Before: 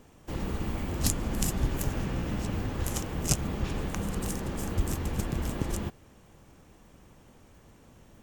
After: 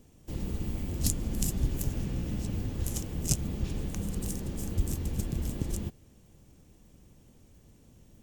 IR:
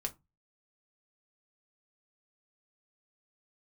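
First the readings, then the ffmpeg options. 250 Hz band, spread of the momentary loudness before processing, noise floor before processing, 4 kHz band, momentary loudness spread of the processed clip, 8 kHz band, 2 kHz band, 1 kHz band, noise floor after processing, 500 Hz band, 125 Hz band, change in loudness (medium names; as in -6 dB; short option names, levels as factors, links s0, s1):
-2.0 dB, 5 LU, -57 dBFS, -4.0 dB, 5 LU, -1.5 dB, -9.5 dB, -11.5 dB, -59 dBFS, -5.5 dB, -0.5 dB, -1.5 dB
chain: -af "equalizer=f=1200:t=o:w=2.5:g=-13"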